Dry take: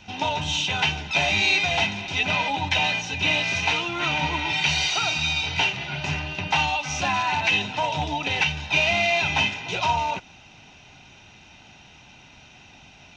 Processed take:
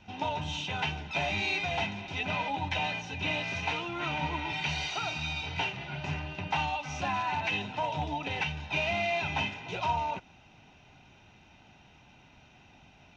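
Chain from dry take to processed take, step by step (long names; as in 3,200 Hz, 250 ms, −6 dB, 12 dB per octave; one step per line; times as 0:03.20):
high-shelf EQ 2,800 Hz −11 dB
level −5.5 dB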